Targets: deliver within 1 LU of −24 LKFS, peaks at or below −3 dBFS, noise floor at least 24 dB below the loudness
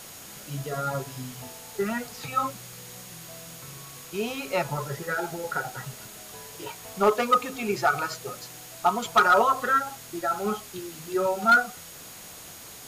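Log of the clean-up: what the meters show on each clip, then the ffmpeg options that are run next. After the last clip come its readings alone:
interfering tone 6,700 Hz; level of the tone −51 dBFS; background noise floor −44 dBFS; target noise floor −50 dBFS; integrated loudness −26.0 LKFS; sample peak −11.5 dBFS; target loudness −24.0 LKFS
→ -af "bandreject=frequency=6700:width=30"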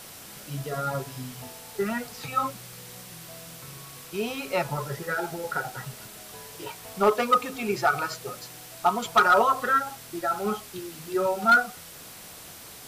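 interfering tone none found; background noise floor −45 dBFS; target noise floor −50 dBFS
→ -af "afftdn=noise_reduction=6:noise_floor=-45"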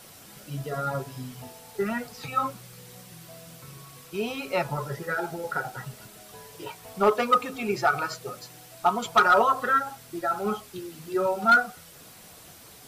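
background noise floor −49 dBFS; target noise floor −50 dBFS
→ -af "afftdn=noise_reduction=6:noise_floor=-49"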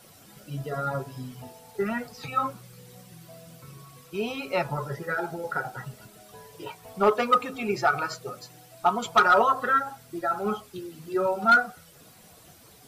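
background noise floor −53 dBFS; integrated loudness −26.0 LKFS; sample peak −11.5 dBFS; target loudness −24.0 LKFS
→ -af "volume=2dB"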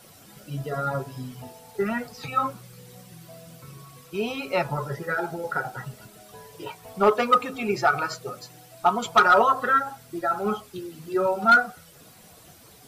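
integrated loudness −24.0 LKFS; sample peak −9.5 dBFS; background noise floor −51 dBFS

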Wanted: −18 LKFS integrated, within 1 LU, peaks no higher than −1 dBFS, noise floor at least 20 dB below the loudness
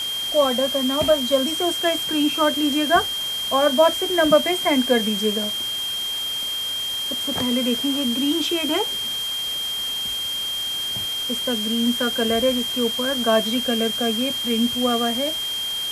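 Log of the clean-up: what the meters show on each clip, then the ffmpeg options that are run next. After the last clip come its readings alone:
interfering tone 3,200 Hz; level of the tone −24 dBFS; background noise floor −27 dBFS; target noise floor −41 dBFS; integrated loudness −20.5 LKFS; sample peak −3.5 dBFS; target loudness −18.0 LKFS
→ -af "bandreject=frequency=3200:width=30"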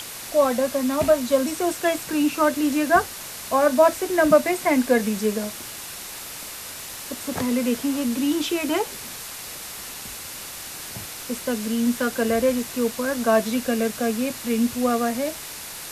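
interfering tone none found; background noise floor −36 dBFS; target noise floor −44 dBFS
→ -af "afftdn=noise_reduction=8:noise_floor=-36"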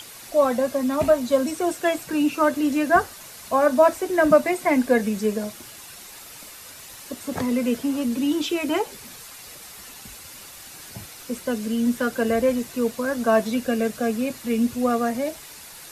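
background noise floor −42 dBFS; target noise floor −43 dBFS
→ -af "afftdn=noise_reduction=6:noise_floor=-42"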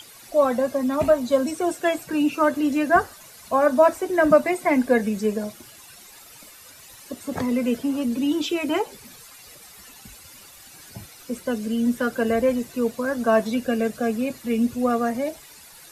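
background noise floor −47 dBFS; integrated loudness −22.5 LKFS; sample peak −4.5 dBFS; target loudness −18.0 LKFS
→ -af "volume=4.5dB,alimiter=limit=-1dB:level=0:latency=1"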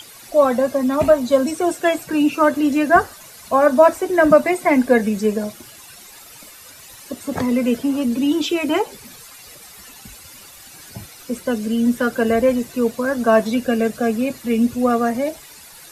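integrated loudness −18.0 LKFS; sample peak −1.0 dBFS; background noise floor −42 dBFS

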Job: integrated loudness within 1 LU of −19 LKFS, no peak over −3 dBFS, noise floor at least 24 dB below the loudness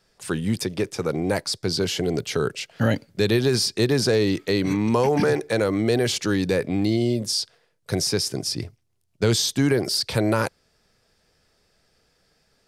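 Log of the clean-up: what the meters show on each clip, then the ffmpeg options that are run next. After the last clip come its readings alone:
integrated loudness −23.0 LKFS; sample peak −7.5 dBFS; target loudness −19.0 LKFS
→ -af "volume=4dB"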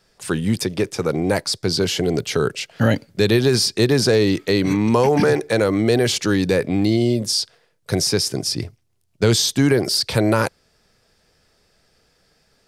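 integrated loudness −19.0 LKFS; sample peak −3.5 dBFS; background noise floor −63 dBFS

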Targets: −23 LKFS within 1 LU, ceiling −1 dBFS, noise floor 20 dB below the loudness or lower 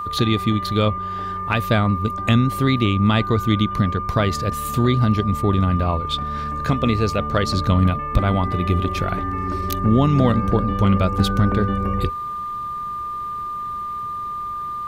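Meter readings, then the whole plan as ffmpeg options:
interfering tone 1,200 Hz; level of the tone −25 dBFS; integrated loudness −20.5 LKFS; sample peak −3.5 dBFS; target loudness −23.0 LKFS
→ -af "bandreject=frequency=1200:width=30"
-af "volume=-2.5dB"

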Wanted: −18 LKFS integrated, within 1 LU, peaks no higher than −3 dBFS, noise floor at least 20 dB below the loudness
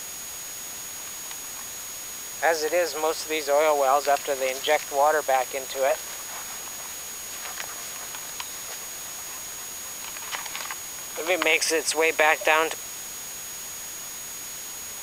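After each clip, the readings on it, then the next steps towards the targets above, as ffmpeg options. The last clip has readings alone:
interfering tone 6,700 Hz; level of the tone −37 dBFS; background noise floor −37 dBFS; target noise floor −47 dBFS; integrated loudness −26.5 LKFS; sample peak −3.5 dBFS; target loudness −18.0 LKFS
→ -af "bandreject=frequency=6700:width=30"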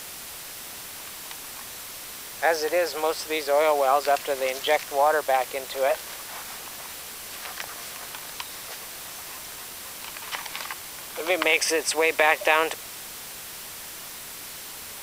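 interfering tone none found; background noise floor −39 dBFS; target noise floor −47 dBFS
→ -af "afftdn=noise_reduction=8:noise_floor=-39"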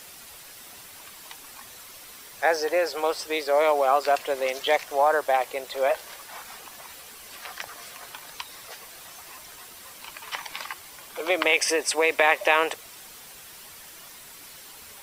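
background noise floor −46 dBFS; integrated loudness −24.0 LKFS; sample peak −4.0 dBFS; target loudness −18.0 LKFS
→ -af "volume=6dB,alimiter=limit=-3dB:level=0:latency=1"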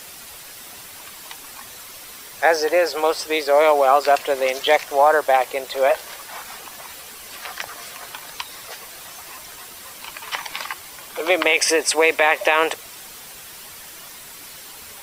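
integrated loudness −18.5 LKFS; sample peak −3.0 dBFS; background noise floor −40 dBFS

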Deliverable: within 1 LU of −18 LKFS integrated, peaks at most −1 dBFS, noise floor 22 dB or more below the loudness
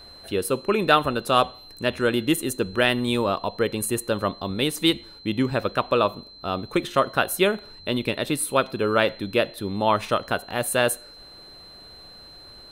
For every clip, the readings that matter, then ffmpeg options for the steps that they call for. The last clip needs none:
interfering tone 4,100 Hz; level of the tone −44 dBFS; integrated loudness −24.0 LKFS; sample peak −3.5 dBFS; target loudness −18.0 LKFS
→ -af "bandreject=frequency=4100:width=30"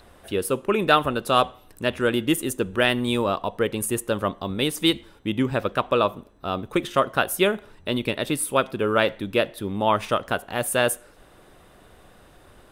interfering tone none found; integrated loudness −24.0 LKFS; sample peak −3.5 dBFS; target loudness −18.0 LKFS
→ -af "volume=6dB,alimiter=limit=-1dB:level=0:latency=1"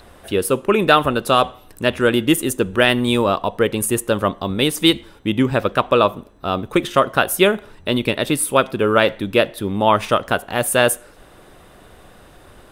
integrated loudness −18.0 LKFS; sample peak −1.0 dBFS; background noise floor −47 dBFS

